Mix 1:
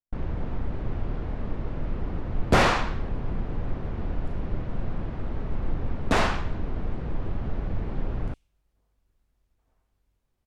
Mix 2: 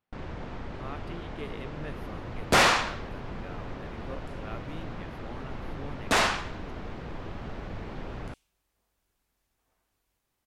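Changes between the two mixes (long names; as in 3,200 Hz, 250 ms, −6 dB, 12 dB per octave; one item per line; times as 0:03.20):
speech: unmuted
master: add spectral tilt +2.5 dB per octave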